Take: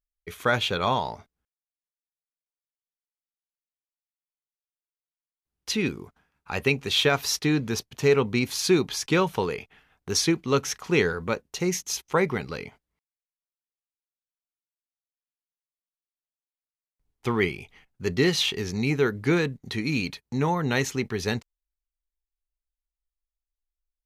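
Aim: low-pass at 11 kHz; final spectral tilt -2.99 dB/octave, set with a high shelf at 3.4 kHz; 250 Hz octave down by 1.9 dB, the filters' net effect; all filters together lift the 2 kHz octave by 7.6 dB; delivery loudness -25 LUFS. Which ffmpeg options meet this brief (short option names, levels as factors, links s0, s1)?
-af "lowpass=11000,equalizer=f=250:t=o:g=-3,equalizer=f=2000:t=o:g=8,highshelf=f=3400:g=4.5,volume=0.75"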